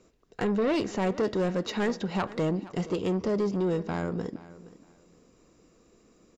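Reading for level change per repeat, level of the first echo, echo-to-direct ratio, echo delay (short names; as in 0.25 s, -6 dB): -13.0 dB, -18.0 dB, -18.0 dB, 0.47 s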